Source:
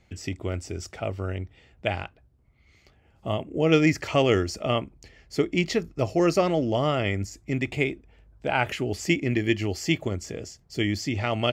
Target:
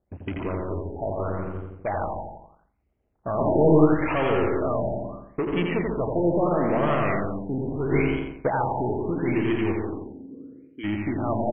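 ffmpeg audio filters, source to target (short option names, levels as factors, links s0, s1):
-filter_complex "[0:a]aeval=exprs='val(0)+0.5*0.0316*sgn(val(0))':c=same,afwtdn=0.02,agate=range=0.0141:threshold=0.0224:ratio=16:detection=peak,equalizer=f=100:t=o:w=0.67:g=-7,equalizer=f=1000:t=o:w=0.67:g=8,equalizer=f=4000:t=o:w=0.67:g=-8,asoftclip=type=tanh:threshold=0.0891,asplit=3[s0][s1][s2];[s0]afade=t=out:st=9.8:d=0.02[s3];[s1]asplit=3[s4][s5][s6];[s4]bandpass=f=270:t=q:w=8,volume=1[s7];[s5]bandpass=f=2290:t=q:w=8,volume=0.501[s8];[s6]bandpass=f=3010:t=q:w=8,volume=0.355[s9];[s7][s8][s9]amix=inputs=3:normalize=0,afade=t=in:st=9.8:d=0.02,afade=t=out:st=10.83:d=0.02[s10];[s2]afade=t=in:st=10.83:d=0.02[s11];[s3][s10][s11]amix=inputs=3:normalize=0,asplit=2[s12][s13];[s13]aecho=0:1:145|186|317:0.501|0.376|0.126[s14];[s12][s14]amix=inputs=2:normalize=0,asplit=3[s15][s16][s17];[s15]afade=t=out:st=3.37:d=0.02[s18];[s16]acontrast=69,afade=t=in:st=3.37:d=0.02,afade=t=out:st=3.84:d=0.02[s19];[s17]afade=t=in:st=3.84:d=0.02[s20];[s18][s19][s20]amix=inputs=3:normalize=0,asplit=2[s21][s22];[s22]aecho=0:1:86|172|258|344|430:0.631|0.252|0.101|0.0404|0.0162[s23];[s21][s23]amix=inputs=2:normalize=0,asplit=3[s24][s25][s26];[s24]afade=t=out:st=7.91:d=0.02[s27];[s25]acontrast=70,afade=t=in:st=7.91:d=0.02,afade=t=out:st=8.47:d=0.02[s28];[s26]afade=t=in:st=8.47:d=0.02[s29];[s27][s28][s29]amix=inputs=3:normalize=0,afftfilt=real='re*lt(b*sr/1024,920*pow(3400/920,0.5+0.5*sin(2*PI*0.76*pts/sr)))':imag='im*lt(b*sr/1024,920*pow(3400/920,0.5+0.5*sin(2*PI*0.76*pts/sr)))':win_size=1024:overlap=0.75"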